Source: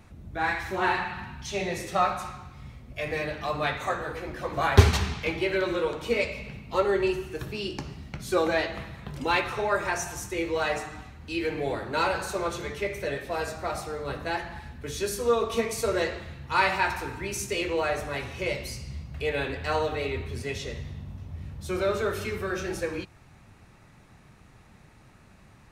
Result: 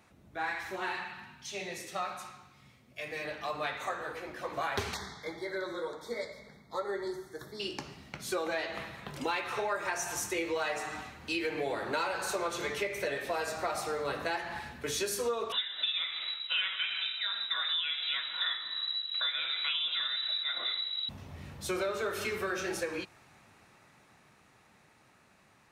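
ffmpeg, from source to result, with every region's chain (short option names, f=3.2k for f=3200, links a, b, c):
-filter_complex "[0:a]asettb=1/sr,asplit=3[a][b][c];[a]atrim=end=0.764[d];[b]atrim=start=0.76:end=3.25,asetpts=PTS-STARTPTS,afade=t=in:d=0.004:c=qsin,afade=t=out:st=2.486:d=0.004:c=qsin,highpass=94,equalizer=f=830:t=o:w=2.5:g=-5.5[e];[c]atrim=start=3.246[f];[d][e]acrossfade=d=0.004:c1=hsin:c2=qsin[g];[g][f]acrossfade=d=0.004:c1=qsin:c2=hsin,asettb=1/sr,asplit=3[h][i][j];[h]atrim=end=4.944[k];[i]atrim=start=4.94:end=7.6,asetpts=PTS-STARTPTS,afade=t=in:d=0.004:c=qsin,afade=t=out:st=2.656:d=0.004:c=qsin,flanger=delay=4:depth=3:regen=-62:speed=1.9:shape=triangular,asuperstop=centerf=2700:order=12:qfactor=2.3[l];[j]atrim=start=7.596[m];[k][l]acrossfade=d=0.004:c1=hsin:c2=qsin[n];[n][m]acrossfade=d=0.004:c1=qsin:c2=hsin,asettb=1/sr,asplit=3[o][p][q];[o]atrim=end=15.524[r];[p]atrim=start=15.52:end=21.09,asetpts=PTS-STARTPTS,afade=t=in:d=0.004:c=qsin,afade=t=out:st=5.566:d=0.004:c=qsin,tremolo=f=2.7:d=0.34,lowpass=f=3.4k:t=q:w=0.5098,lowpass=f=3.4k:t=q:w=0.6013,lowpass=f=3.4k:t=q:w=0.9,lowpass=f=3.4k:t=q:w=2.563,afreqshift=-4000[s];[q]atrim=start=21.086[t];[r][s]acrossfade=d=0.004:c1=hsin:c2=qsin[u];[u][t]acrossfade=d=0.004:c1=qsin:c2=hsin,dynaudnorm=f=470:g=17:m=13dB,highpass=f=440:p=1,acompressor=threshold=-26dB:ratio=6,volume=-4dB"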